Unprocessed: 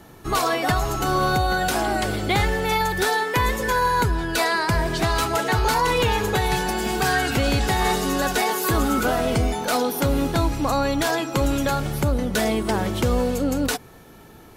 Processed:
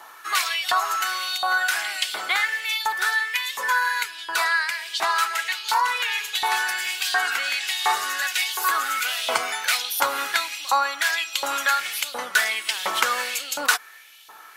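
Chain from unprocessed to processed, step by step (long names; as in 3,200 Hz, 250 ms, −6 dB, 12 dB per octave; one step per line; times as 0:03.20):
auto-filter high-pass saw up 1.4 Hz 950–3,500 Hz
speech leveller 0.5 s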